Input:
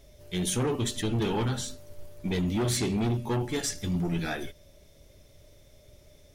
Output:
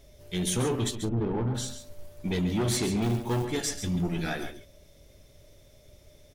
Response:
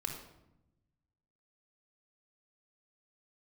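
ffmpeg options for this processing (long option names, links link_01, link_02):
-filter_complex "[0:a]asplit=3[link_01][link_02][link_03];[link_01]afade=type=out:start_time=0.94:duration=0.02[link_04];[link_02]adynamicsmooth=sensitivity=0.5:basefreq=590,afade=type=in:start_time=0.94:duration=0.02,afade=type=out:start_time=1.54:duration=0.02[link_05];[link_03]afade=type=in:start_time=1.54:duration=0.02[link_06];[link_04][link_05][link_06]amix=inputs=3:normalize=0,aecho=1:1:137:0.316,asettb=1/sr,asplit=3[link_07][link_08][link_09];[link_07]atrim=end=3.024[link_10];[link_08]atrim=start=3.02:end=3.45,asetpts=PTS-STARTPTS,afade=type=in:duration=0.004:curve=qsin,afade=type=out:start_time=0.426:duration=0.004:curve=qsin,acrusher=bits=5:mode=log:mix=0:aa=0.000001[link_11];[link_09]atrim=start=3.446[link_12];[link_10][link_11]acrossfade=duration=0.004:curve1=hsin:curve2=qsin[link_13];[link_13][link_12]acrossfade=duration=0.004:curve1=qsin:curve2=hsin"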